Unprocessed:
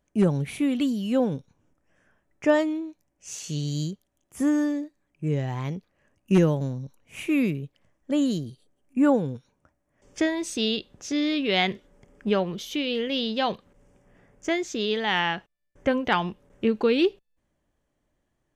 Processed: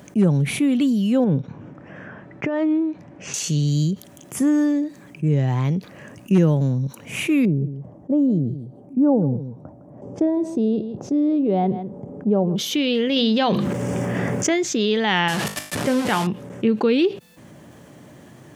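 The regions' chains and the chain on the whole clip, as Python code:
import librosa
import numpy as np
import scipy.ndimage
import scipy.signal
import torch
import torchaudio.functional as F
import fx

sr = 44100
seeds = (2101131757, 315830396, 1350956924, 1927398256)

y = fx.chain(x, sr, fx.lowpass(hz=2300.0, slope=12),
    fx.over_compress(threshold_db=-27.0, ratio=-1.0), at=(1.24, 3.34))
y = fx.chain(y, sr, fx.curve_eq(hz=(800.0, 1800.0, 3000.0), db=(0, -24, -27)),
    fx.echo_single(ms=159, db=-19.5), at=(7.45, 12.56))
y = fx.chain(y, sr, fx.hum_notches(base_hz=50, count=7),
    fx.env_flatten(amount_pct=70), at=(13.16, 14.54))
y = fx.chain(y, sr, fx.delta_mod(bps=64000, step_db=-24.0),
    fx.comb_fb(f0_hz=51.0, decay_s=0.28, harmonics='all', damping=0.0, mix_pct=60), at=(15.28, 16.27))
y = scipy.signal.sosfilt(scipy.signal.butter(4, 120.0, 'highpass', fs=sr, output='sos'), y)
y = fx.low_shelf(y, sr, hz=220.0, db=10.0)
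y = fx.env_flatten(y, sr, amount_pct=50)
y = F.gain(torch.from_numpy(y), -2.5).numpy()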